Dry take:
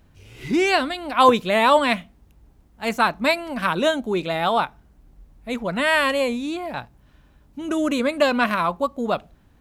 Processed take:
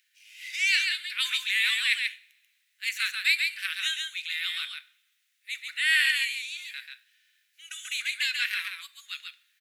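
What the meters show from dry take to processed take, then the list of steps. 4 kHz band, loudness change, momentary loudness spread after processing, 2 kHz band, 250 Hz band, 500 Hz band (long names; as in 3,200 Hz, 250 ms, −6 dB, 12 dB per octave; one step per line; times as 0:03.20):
+1.5 dB, −5.0 dB, 17 LU, −1.0 dB, below −40 dB, below −40 dB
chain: Butterworth high-pass 1,800 Hz 48 dB per octave
single-tap delay 138 ms −4.5 dB
coupled-rooms reverb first 0.47 s, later 2.2 s, from −26 dB, DRR 12.5 dB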